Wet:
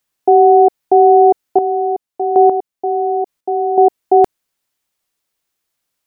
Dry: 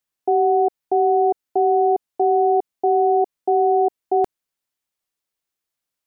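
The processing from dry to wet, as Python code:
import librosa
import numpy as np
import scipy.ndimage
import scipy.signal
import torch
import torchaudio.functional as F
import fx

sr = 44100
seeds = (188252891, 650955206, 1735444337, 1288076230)

y = fx.chopper(x, sr, hz=1.1, depth_pct=65, duty_pct=15, at=(1.45, 3.78))
y = y * 10.0 ** (9.0 / 20.0)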